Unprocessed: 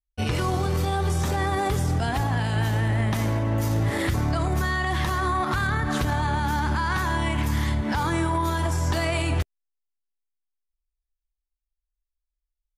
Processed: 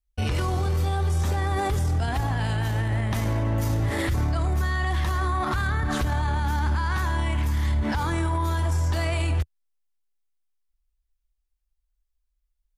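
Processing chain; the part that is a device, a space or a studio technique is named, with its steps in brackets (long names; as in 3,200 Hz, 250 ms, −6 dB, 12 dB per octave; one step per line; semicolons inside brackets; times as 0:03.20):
car stereo with a boomy subwoofer (low shelf with overshoot 100 Hz +6 dB, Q 1.5; brickwall limiter −20 dBFS, peak gain reduction 9.5 dB)
level +2.5 dB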